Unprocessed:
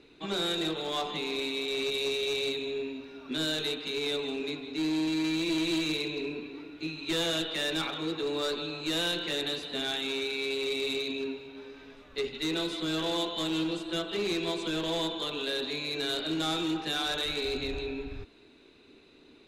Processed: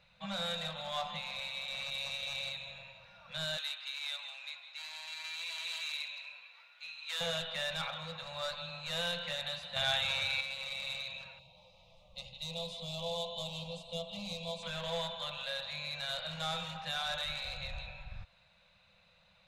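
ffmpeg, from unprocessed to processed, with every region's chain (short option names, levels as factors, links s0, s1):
-filter_complex "[0:a]asettb=1/sr,asplit=3[s0][s1][s2];[s0]atrim=end=3.574[s3];[s1]atrim=start=3.57:end=7.21,asetpts=PTS-STARTPTS,afade=t=in:d=0.004:c=qsin,afade=t=out:st=3.636:d=0.004:c=qsin,highpass=1200,highshelf=f=10000:g=4[s4];[s2]atrim=start=7.206[s5];[s3][s4]acrossfade=d=0.004:c1=hsin:c2=qsin[s6];[s6][s5]acrossfade=d=0.004:c1=qsin:c2=hsin,asettb=1/sr,asplit=3[s7][s8][s9];[s7]atrim=end=9.764[s10];[s8]atrim=start=9.76:end=10.41,asetpts=PTS-STARTPTS,afade=t=in:d=0.004:c=qsin,afade=t=out:st=0.646:d=0.004:c=qsin,equalizer=f=95:w=3:g=13.5,acontrast=64[s11];[s9]atrim=start=10.406[s12];[s10][s11]acrossfade=d=0.004:c1=hsin:c2=qsin[s13];[s13][s12]acrossfade=d=0.004:c1=qsin:c2=hsin,asettb=1/sr,asplit=3[s14][s15][s16];[s14]atrim=end=11.394[s17];[s15]atrim=start=11.39:end=14.63,asetpts=PTS-STARTPTS,afade=t=in:d=0.004:c=qsin,afade=t=out:st=3.236:d=0.004:c=qsin,asuperstop=centerf=1600:order=4:qfactor=0.78,acompressor=mode=upward:threshold=0.002:ratio=2.5:attack=3.2:release=140:knee=2.83:detection=peak[s18];[s16]atrim=start=14.626[s19];[s17][s18]acrossfade=d=0.004:c1=hsin:c2=qsin[s20];[s20][s19]acrossfade=d=0.004:c1=qsin:c2=hsin,highshelf=f=5300:g=-6,afftfilt=real='re*(1-between(b*sr/4096,210,490))':imag='im*(1-between(b*sr/4096,210,490))':win_size=4096:overlap=0.75,volume=0.668"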